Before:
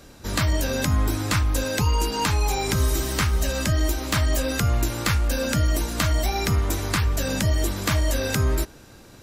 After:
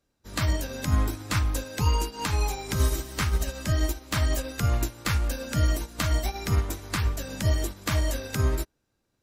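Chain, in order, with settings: upward expansion 2.5:1, over -37 dBFS

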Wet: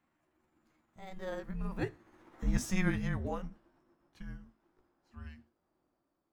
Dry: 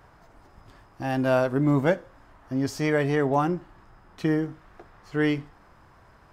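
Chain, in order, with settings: pitch bend over the whole clip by +7 st ending unshifted; Doppler pass-by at 2.54 s, 12 m/s, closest 2.5 m; frequency shift -380 Hz; trim -1 dB

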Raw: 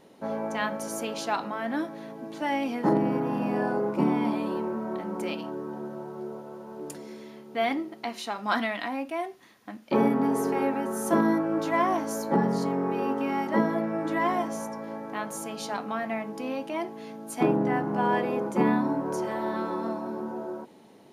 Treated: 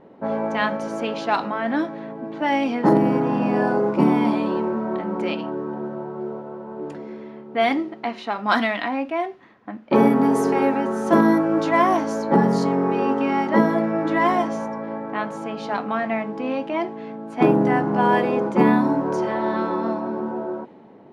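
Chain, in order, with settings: level-controlled noise filter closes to 1.4 kHz, open at -19.5 dBFS; trim +7 dB

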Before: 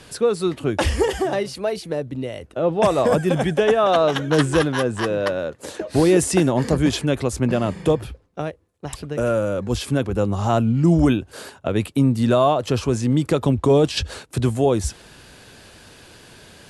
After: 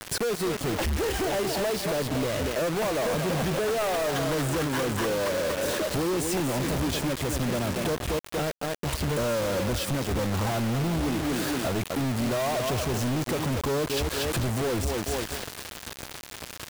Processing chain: peaking EQ 72 Hz +8 dB 0.31 oct; thinning echo 235 ms, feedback 36%, high-pass 170 Hz, level -10 dB; compression 6:1, threshold -29 dBFS, peak gain reduction 16.5 dB; treble shelf 4.3 kHz -5 dB; companded quantiser 2-bit

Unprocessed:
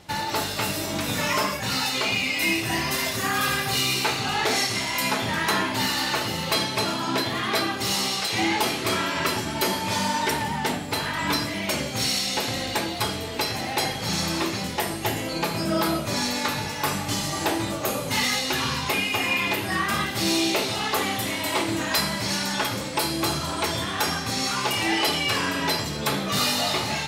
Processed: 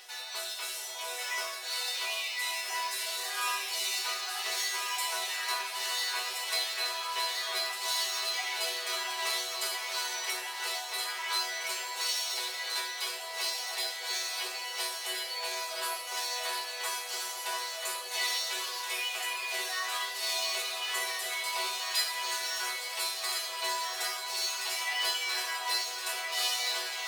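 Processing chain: Chebyshev high-pass 380 Hz, order 10; tilt EQ +3 dB/octave; upward compressor, threshold -27 dBFS; chord resonator B3 sus4, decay 0.37 s; echo whose repeats swap between lows and highs 686 ms, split 1.2 kHz, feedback 81%, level -3.5 dB; decimation joined by straight lines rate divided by 2×; trim +6 dB

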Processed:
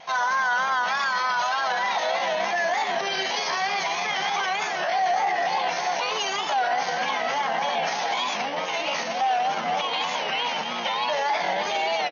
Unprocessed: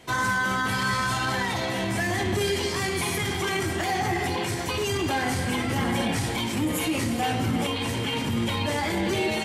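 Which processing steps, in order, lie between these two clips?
resonant low shelf 470 Hz -13.5 dB, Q 3; feedback delay 80 ms, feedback 16%, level -17 dB; peak limiter -20.5 dBFS, peak gain reduction 9.5 dB; vibrato 4.2 Hz 78 cents; tempo 0.78×; frequency-shifting echo 99 ms, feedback 57%, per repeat -140 Hz, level -18 dB; FFT band-pass 150–6600 Hz; warped record 33 1/3 rpm, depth 100 cents; trim +4.5 dB

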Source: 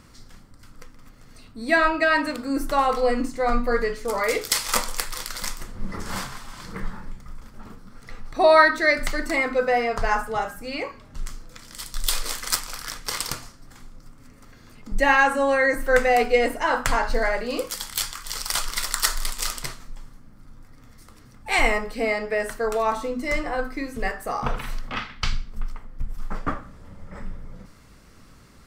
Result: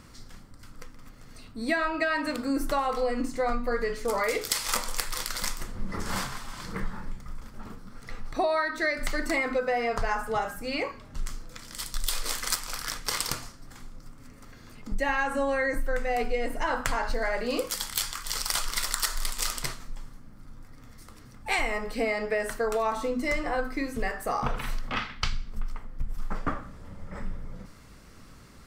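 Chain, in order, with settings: 15.09–16.81 s: bass shelf 130 Hz +12 dB; compression 12:1, threshold -23 dBFS, peak gain reduction 15 dB

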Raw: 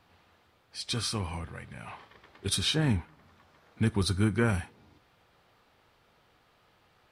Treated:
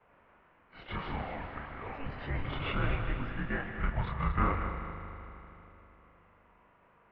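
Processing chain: short-time spectra conjugated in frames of 78 ms; peaking EQ 1.4 kHz +7 dB 0.97 oct; in parallel at -10 dB: sample-and-hold 20×; on the sum: ever faster or slower copies 225 ms, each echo +5 st, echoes 3, each echo -6 dB; on a send: multi-head delay 78 ms, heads second and third, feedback 65%, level -10.5 dB; on the sum: mistuned SSB -270 Hz 190–2800 Hz

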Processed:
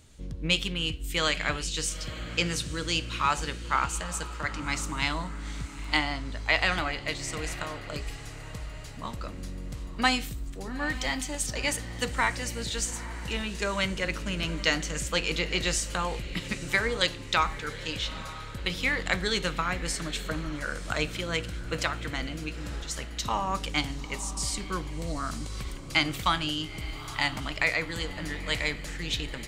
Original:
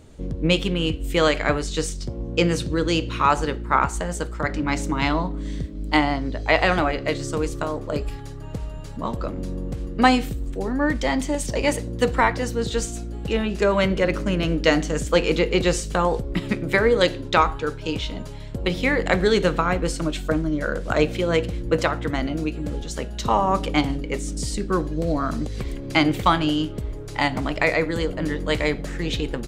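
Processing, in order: amplifier tone stack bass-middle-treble 5-5-5; on a send: echo that smears into a reverb 896 ms, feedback 40%, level -14 dB; on the sum: trim +6.5 dB

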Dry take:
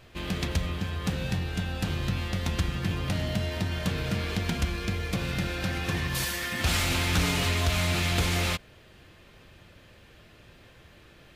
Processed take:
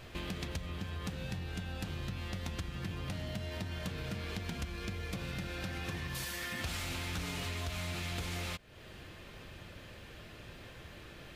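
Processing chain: compression 4:1, threshold -42 dBFS, peak gain reduction 17.5 dB; trim +3 dB

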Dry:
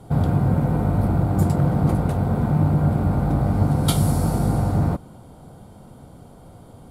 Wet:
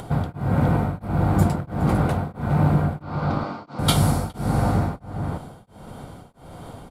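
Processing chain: peaking EQ 2.1 kHz +7.5 dB 2.9 oct; upward compressor, threshold -31 dBFS; 3.02–3.79 s: cabinet simulation 320–5800 Hz, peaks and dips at 440 Hz -5 dB, 730 Hz -5 dB, 1.2 kHz +4 dB, 1.8 kHz -7 dB, 4.6 kHz +6 dB; echo from a far wall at 71 m, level -7 dB; tremolo of two beating tones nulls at 1.5 Hz

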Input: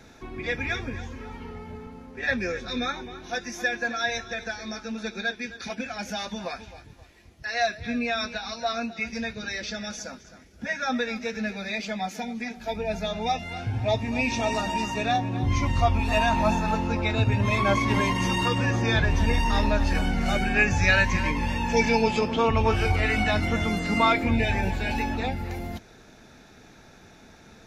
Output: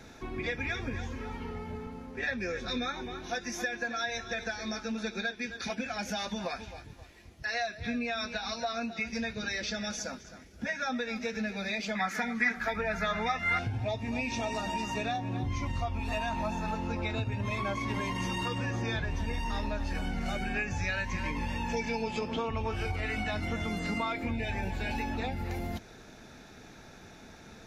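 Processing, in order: compression 6:1, threshold -30 dBFS, peak gain reduction 14 dB; 11.95–13.59 s: high-order bell 1.5 kHz +15 dB 1.2 oct

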